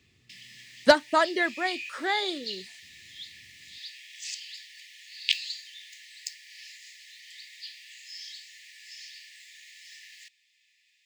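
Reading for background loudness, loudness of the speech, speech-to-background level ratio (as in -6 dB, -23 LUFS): -38.0 LUFS, -25.5 LUFS, 12.5 dB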